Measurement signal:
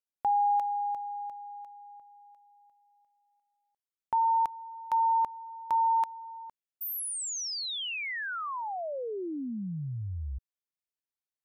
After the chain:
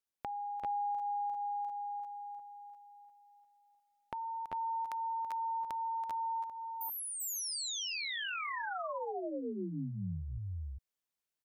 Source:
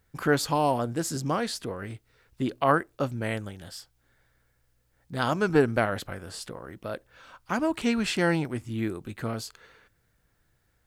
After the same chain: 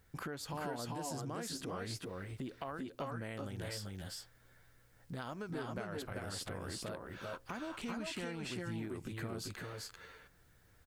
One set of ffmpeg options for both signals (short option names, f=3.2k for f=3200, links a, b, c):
-filter_complex "[0:a]acompressor=threshold=-40dB:ratio=8:attack=3.2:release=265:knee=6:detection=peak,asplit=2[a][b];[b]aecho=0:1:389|400:0.596|0.631[c];[a][c]amix=inputs=2:normalize=0,volume=1dB"